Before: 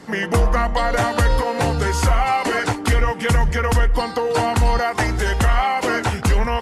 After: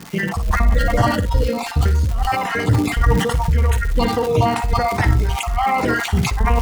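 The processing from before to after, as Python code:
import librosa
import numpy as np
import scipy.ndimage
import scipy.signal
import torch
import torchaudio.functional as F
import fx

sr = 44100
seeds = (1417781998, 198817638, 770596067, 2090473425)

p1 = fx.spec_dropout(x, sr, seeds[0], share_pct=38)
p2 = scipy.signal.sosfilt(scipy.signal.butter(2, 59.0, 'highpass', fs=sr, output='sos'), p1)
p3 = fx.bass_treble(p2, sr, bass_db=9, treble_db=-3)
p4 = fx.hpss(p3, sr, part='harmonic', gain_db=5)
p5 = fx.low_shelf(p4, sr, hz=120.0, db=8.0)
p6 = fx.over_compress(p5, sr, threshold_db=-8.0, ratio=-1.0)
p7 = fx.dmg_crackle(p6, sr, seeds[1], per_s=290.0, level_db=-18.0)
p8 = p7 + fx.room_early_taps(p7, sr, ms=(42, 58), db=(-17.5, -10.0), dry=0)
p9 = fx.sustainer(p8, sr, db_per_s=52.0)
y = p9 * 10.0 ** (-7.5 / 20.0)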